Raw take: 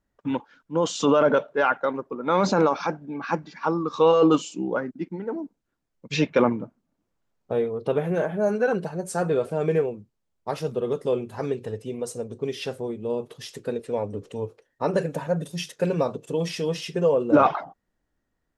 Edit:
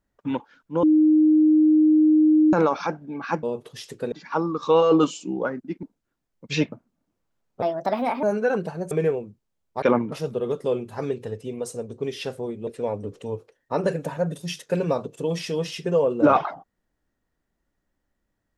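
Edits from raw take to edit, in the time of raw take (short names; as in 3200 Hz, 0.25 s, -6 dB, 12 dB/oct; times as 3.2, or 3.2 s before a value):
0.83–2.53 bleep 309 Hz -13 dBFS
5.14–5.44 cut
6.33–6.63 move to 10.53
7.53–8.41 speed 144%
9.09–9.62 cut
13.08–13.77 move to 3.43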